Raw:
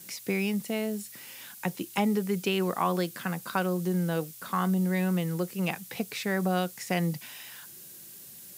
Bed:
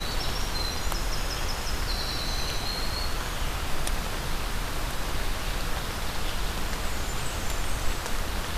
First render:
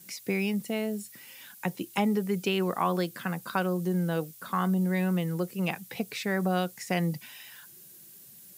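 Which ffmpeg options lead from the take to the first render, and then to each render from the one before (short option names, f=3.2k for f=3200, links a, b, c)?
-af "afftdn=nr=6:nf=-48"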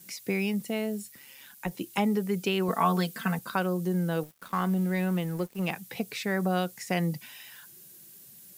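-filter_complex "[0:a]asplit=3[a][b][c];[a]afade=t=out:st=1.08:d=0.02[d];[b]tremolo=f=140:d=0.462,afade=t=in:st=1.08:d=0.02,afade=t=out:st=1.71:d=0.02[e];[c]afade=t=in:st=1.71:d=0.02[f];[d][e][f]amix=inputs=3:normalize=0,asettb=1/sr,asplit=3[g][h][i];[g]atrim=end=2.684[j];[h]atrim=start=2.68:end=3.39,asetpts=PTS-STARTPTS,afade=t=in:d=0.004:c=qsin,afade=t=out:st=0.706:d=0.004:c=qsin,aecho=1:1:4.5:0.95,atrim=end_sample=31311[k];[i]atrim=start=3.386[l];[j][k]acrossfade=d=0.004:c1=hsin:c2=qsin[m];[m][l]acrossfade=d=0.004:c1=qsin:c2=hsin,asettb=1/sr,asplit=3[n][o][p];[n]atrim=end=4.234[q];[o]atrim=start=4.23:end=5.71,asetpts=PTS-STARTPTS,afade=t=in:d=0.004:c=qsin,afade=t=out:st=1.476:d=0.004:c=qsin,aeval=exprs='sgn(val(0))*max(abs(val(0))-0.00501,0)':c=same[r];[p]atrim=start=5.706[s];[q][r]acrossfade=d=0.004:c1=hsin:c2=qsin[t];[t][s]acrossfade=d=0.004:c1=qsin:c2=hsin"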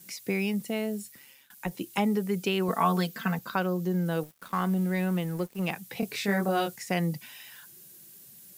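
-filter_complex "[0:a]asettb=1/sr,asplit=3[a][b][c];[a]atrim=end=3.074[d];[b]atrim=start=3.07:end=4.06,asetpts=PTS-STARTPTS,afade=t=in:d=0.004:c=qsin,afade=t=out:st=0.986:d=0.004:c=qsin,equalizer=f=9.5k:w=3:g=-11.5[e];[c]atrim=start=4.056[f];[d][e]acrossfade=d=0.004:c1=hsin:c2=qsin[g];[g][f]acrossfade=d=0.004:c1=qsin:c2=hsin,asettb=1/sr,asplit=3[h][i][j];[h]atrim=end=6.004[k];[i]atrim=start=6:end=6.76,asetpts=PTS-STARTPTS,afade=t=in:d=0.004:c=qsin,afade=t=out:st=0.756:d=0.004:c=qsin,asplit=2[l][m];[m]adelay=25,volume=-2dB[n];[l][n]amix=inputs=2:normalize=0,atrim=end_sample=33516[o];[j]atrim=start=6.756[p];[k][o]acrossfade=d=0.004:c1=hsin:c2=qsin[q];[q][p]acrossfade=d=0.004:c1=qsin:c2=hsin,asplit=2[r][s];[r]atrim=end=1.5,asetpts=PTS-STARTPTS,afade=t=out:st=1.04:d=0.46:c=qsin:silence=0.105925[t];[s]atrim=start=1.5,asetpts=PTS-STARTPTS,afade=t=in:d=0.004:c=hsin:silence=0.105925[u];[t][u]concat=n=2:v=0:a=1"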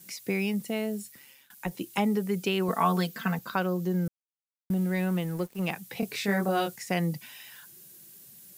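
-filter_complex "[0:a]asplit=3[a][b][c];[a]atrim=end=4.08,asetpts=PTS-STARTPTS,afade=t=out:st=4.076:d=0.004:c=hsin[d];[b]atrim=start=4.08:end=4.7,asetpts=PTS-STARTPTS,volume=0[e];[c]atrim=start=4.7,asetpts=PTS-STARTPTS,afade=t=in:d=0.004:c=hsin[f];[d][e][f]concat=n=3:v=0:a=1"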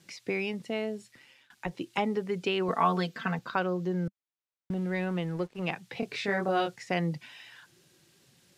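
-af "lowpass=4.4k,equalizer=f=200:t=o:w=0.23:g=-9.5"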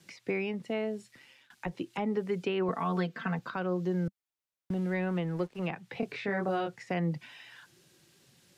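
-filter_complex "[0:a]acrossover=split=280|2600[a][b][c];[b]alimiter=limit=-24dB:level=0:latency=1:release=147[d];[c]acompressor=threshold=-55dB:ratio=4[e];[a][d][e]amix=inputs=3:normalize=0"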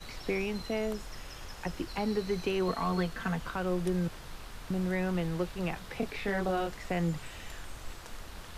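-filter_complex "[1:a]volume=-15dB[a];[0:a][a]amix=inputs=2:normalize=0"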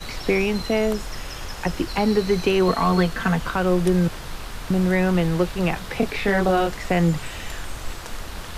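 -af "volume=11.5dB"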